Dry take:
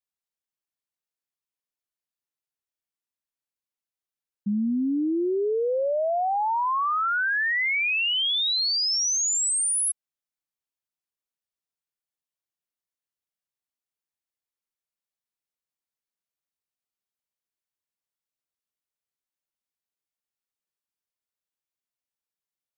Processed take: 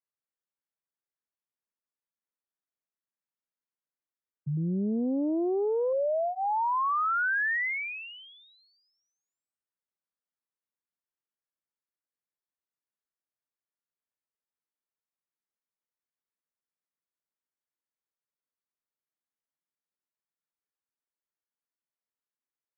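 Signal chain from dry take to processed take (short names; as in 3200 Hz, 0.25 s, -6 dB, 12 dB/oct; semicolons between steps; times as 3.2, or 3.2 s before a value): notch 800 Hz, Q 12; mistuned SSB -59 Hz 200–2100 Hz; 4.57–5.93 Doppler distortion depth 0.48 ms; gain -2.5 dB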